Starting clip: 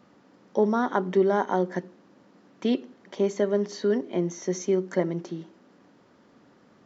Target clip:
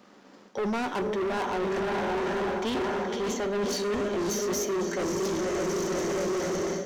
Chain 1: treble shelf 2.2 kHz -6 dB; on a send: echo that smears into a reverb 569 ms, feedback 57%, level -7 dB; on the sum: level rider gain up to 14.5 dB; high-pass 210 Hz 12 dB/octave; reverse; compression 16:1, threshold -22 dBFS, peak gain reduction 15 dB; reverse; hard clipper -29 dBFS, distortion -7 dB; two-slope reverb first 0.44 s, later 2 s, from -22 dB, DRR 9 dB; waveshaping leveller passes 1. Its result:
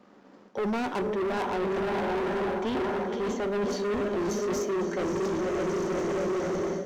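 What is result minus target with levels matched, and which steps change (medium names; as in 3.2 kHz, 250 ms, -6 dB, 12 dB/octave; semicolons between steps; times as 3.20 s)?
4 kHz band -5.0 dB
change: treble shelf 2.2 kHz +5 dB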